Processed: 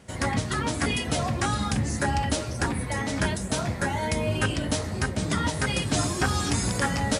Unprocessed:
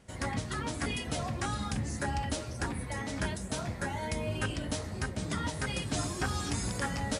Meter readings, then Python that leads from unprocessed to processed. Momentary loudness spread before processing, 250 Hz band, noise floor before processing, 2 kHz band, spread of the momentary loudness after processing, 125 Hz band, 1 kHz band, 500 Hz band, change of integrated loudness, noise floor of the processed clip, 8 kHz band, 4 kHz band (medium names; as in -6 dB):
3 LU, +8.0 dB, -41 dBFS, +8.0 dB, 3 LU, +7.5 dB, +8.0 dB, +8.0 dB, +8.0 dB, -33 dBFS, +8.0 dB, +8.0 dB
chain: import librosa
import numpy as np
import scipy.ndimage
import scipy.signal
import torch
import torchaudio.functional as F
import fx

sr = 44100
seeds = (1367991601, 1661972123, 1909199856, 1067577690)

y = scipy.signal.sosfilt(scipy.signal.butter(2, 55.0, 'highpass', fs=sr, output='sos'), x)
y = y * librosa.db_to_amplitude(8.0)